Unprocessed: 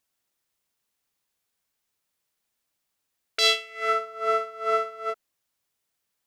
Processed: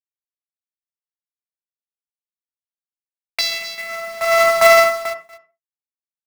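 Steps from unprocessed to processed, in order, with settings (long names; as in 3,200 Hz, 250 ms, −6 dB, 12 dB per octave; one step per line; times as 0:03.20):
low-pass that shuts in the quiet parts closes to 1,400 Hz, open at −20 dBFS
high-pass filter 590 Hz 24 dB per octave
noise gate with hold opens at −30 dBFS
high-shelf EQ 2,400 Hz +9.5 dB
in parallel at +2.5 dB: compressor whose output falls as the input rises −26 dBFS, ratio −0.5
on the sum: phaser with its sweep stopped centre 2,100 Hz, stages 8
log-companded quantiser 4 bits
single-tap delay 238 ms −15 dB
on a send at −8.5 dB: convolution reverb, pre-delay 47 ms
on the sum: boost into a limiter +17.5 dB
tremolo with a sine in dB 0.65 Hz, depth 20 dB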